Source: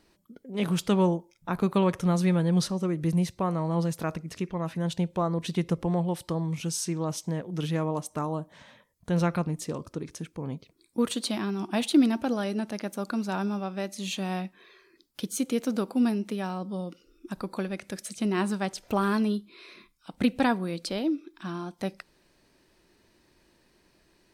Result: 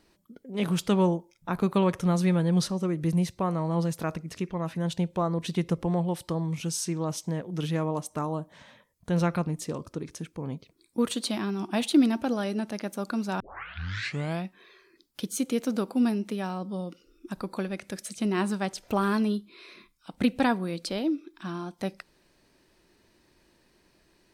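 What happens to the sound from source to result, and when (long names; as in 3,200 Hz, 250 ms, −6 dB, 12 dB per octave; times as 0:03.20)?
0:13.40: tape start 1.04 s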